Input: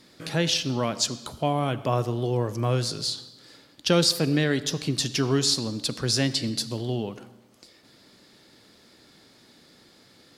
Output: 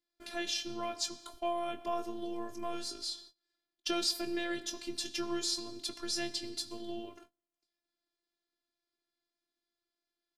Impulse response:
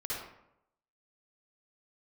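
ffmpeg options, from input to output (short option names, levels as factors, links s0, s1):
-filter_complex "[0:a]agate=range=0.0562:threshold=0.00708:ratio=16:detection=peak,afftfilt=real='hypot(re,im)*cos(PI*b)':imag='0':win_size=512:overlap=0.75,asplit=2[s0][s1];[s1]adelay=22,volume=0.335[s2];[s0][s2]amix=inputs=2:normalize=0,volume=0.447"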